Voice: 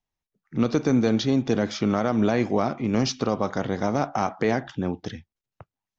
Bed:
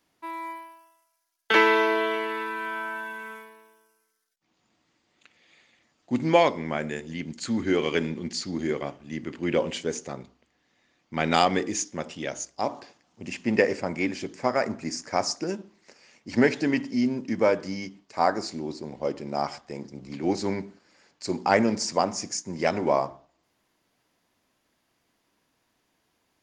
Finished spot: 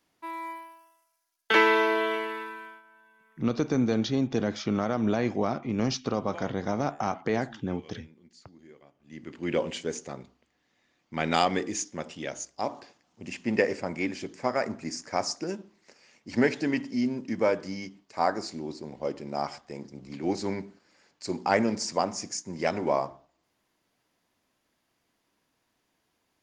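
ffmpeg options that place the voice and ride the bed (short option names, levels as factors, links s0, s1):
-filter_complex "[0:a]adelay=2850,volume=0.596[s0];[1:a]volume=10,afade=t=out:st=2.14:d=0.68:silence=0.0707946,afade=t=in:st=8.94:d=0.57:silence=0.0841395[s1];[s0][s1]amix=inputs=2:normalize=0"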